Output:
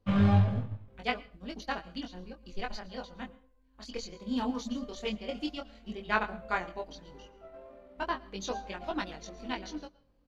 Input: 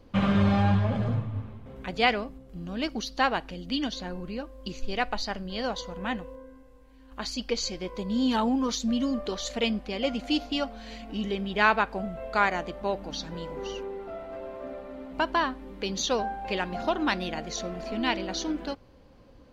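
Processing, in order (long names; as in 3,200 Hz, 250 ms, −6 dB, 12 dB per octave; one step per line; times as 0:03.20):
low-shelf EQ 67 Hz +5.5 dB
tempo change 1.9×
tape wow and flutter 16 cents
chorus effect 0.11 Hz, delay 20 ms, depth 4.1 ms
on a send at −15 dB: convolution reverb RT60 0.35 s, pre-delay 104 ms
on the sum: expander for the loud parts 1.5 to 1, over −48 dBFS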